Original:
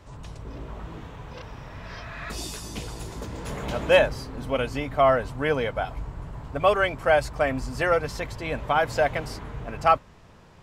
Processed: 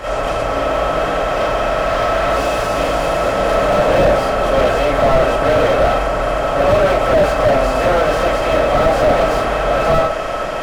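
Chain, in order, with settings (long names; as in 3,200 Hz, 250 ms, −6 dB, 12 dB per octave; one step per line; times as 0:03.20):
compressor on every frequency bin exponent 0.4
comb and all-pass reverb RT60 0.44 s, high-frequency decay 0.4×, pre-delay 0 ms, DRR −9 dB
slew-rate limiting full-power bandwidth 360 Hz
level −4.5 dB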